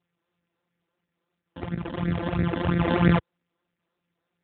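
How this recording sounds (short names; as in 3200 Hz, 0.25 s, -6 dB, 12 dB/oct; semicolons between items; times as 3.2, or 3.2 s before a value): a buzz of ramps at a fixed pitch in blocks of 256 samples; phasing stages 12, 3 Hz, lowest notch 120–1000 Hz; AMR-NB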